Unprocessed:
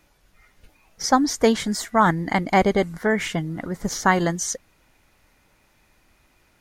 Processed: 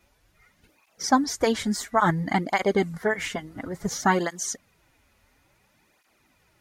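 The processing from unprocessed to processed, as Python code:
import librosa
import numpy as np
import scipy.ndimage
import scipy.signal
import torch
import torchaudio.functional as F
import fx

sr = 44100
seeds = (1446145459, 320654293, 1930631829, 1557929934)

y = fx.flanger_cancel(x, sr, hz=0.58, depth_ms=6.9)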